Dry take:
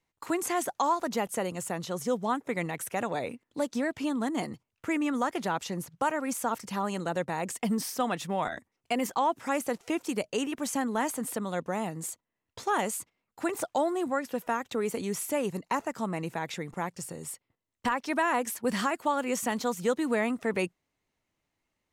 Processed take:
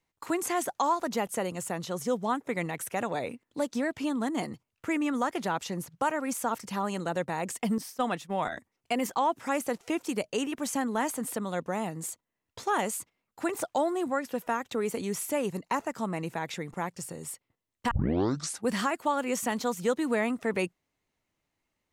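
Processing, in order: 7.78–8.38 s: expander -29 dBFS; 17.91 s: tape start 0.77 s

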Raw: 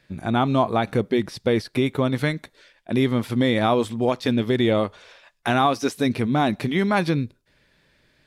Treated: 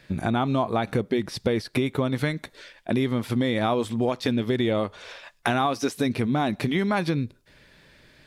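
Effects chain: compression 3:1, threshold -31 dBFS, peak gain reduction 12 dB; trim +7 dB

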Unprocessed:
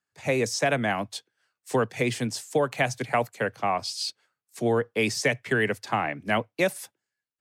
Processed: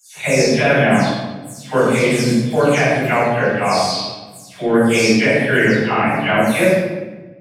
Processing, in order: delay that grows with frequency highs early, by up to 221 ms; simulated room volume 740 m³, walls mixed, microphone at 7.3 m; trim -2 dB

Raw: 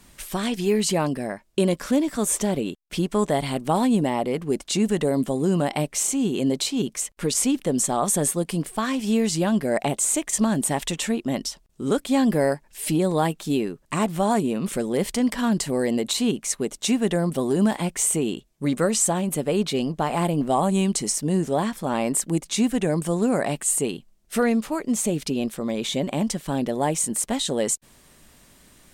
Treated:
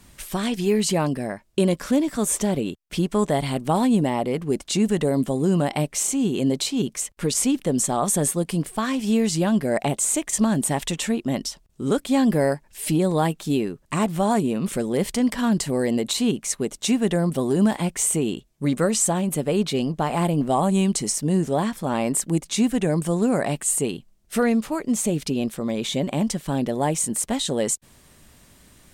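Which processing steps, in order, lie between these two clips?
peaking EQ 87 Hz +5.5 dB 1.6 oct

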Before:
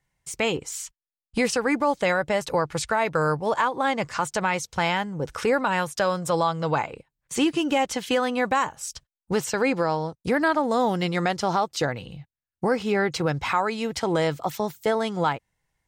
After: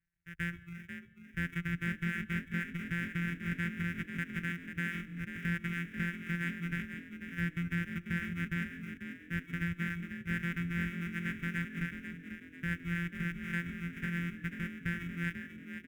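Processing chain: sorted samples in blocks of 256 samples; reverberation RT60 1.2 s, pre-delay 131 ms, DRR 11.5 dB; reverb removal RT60 0.7 s; FFT filter 160 Hz 0 dB, 280 Hz -10 dB, 1.1 kHz -20 dB, 1.6 kHz +9 dB, 7.9 kHz -13 dB; saturation -20 dBFS, distortion -16 dB; Chebyshev shaper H 3 -19 dB, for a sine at -20 dBFS; static phaser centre 1.8 kHz, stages 4; frequency-shifting echo 491 ms, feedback 41%, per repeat +44 Hz, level -9 dB; trim -6 dB

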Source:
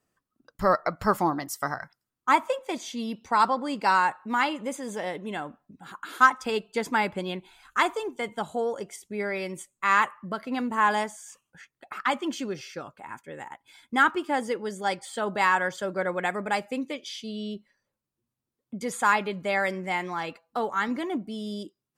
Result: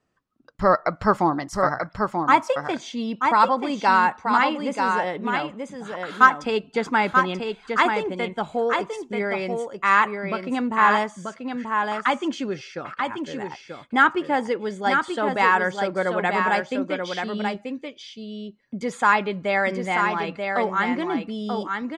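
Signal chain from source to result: distance through air 97 m; on a send: delay 935 ms -5 dB; on the sum: trim +4.5 dB

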